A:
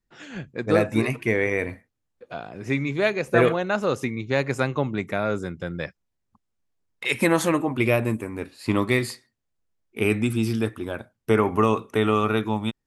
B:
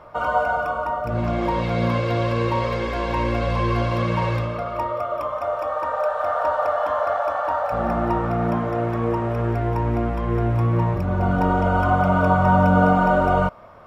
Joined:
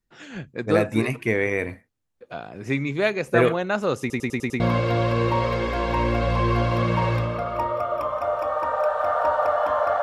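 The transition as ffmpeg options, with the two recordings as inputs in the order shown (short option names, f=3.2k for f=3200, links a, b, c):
-filter_complex "[0:a]apad=whole_dur=10.02,atrim=end=10.02,asplit=6[a][b][c][d][e][f];[a]atrim=end=4.102[g];[b]atrim=start=3.998:end=4.102[h];[c]atrim=start=3.998:end=4.102[i];[d]atrim=start=3.998:end=4.102[j];[e]atrim=start=3.998:end=4.102[k];[f]atrim=start=3.998:end=4.102[l];[1:a]atrim=start=1.798:end=7.22[m];[g][h]acrossfade=d=0.004:c1=hsin:c2=hsin[n];[n][i]acrossfade=d=0.004:c1=hsin:c2=hsin[o];[o][j]acrossfade=d=0.004:c1=hsin:c2=hsin[p];[p][k]acrossfade=d=0.004:c1=hsin:c2=hsin[q];[q][l]acrossfade=d=0.004:c1=hsin:c2=hsin[r];[r][m]acrossfade=d=0.004:c1=hsin:c2=hsin"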